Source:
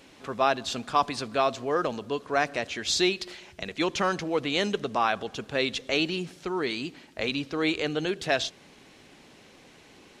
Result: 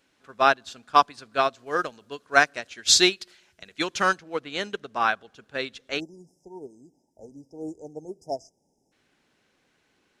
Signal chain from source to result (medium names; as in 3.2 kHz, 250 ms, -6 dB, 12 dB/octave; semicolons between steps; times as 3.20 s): treble shelf 3.7 kHz +5 dB, from 1.59 s +10.5 dB, from 4.19 s +2 dB; 6.00–8.92 s: spectral selection erased 940–4900 Hz; peaking EQ 1.5 kHz +7.5 dB 0.48 oct; upward expansion 2.5:1, over -32 dBFS; trim +5.5 dB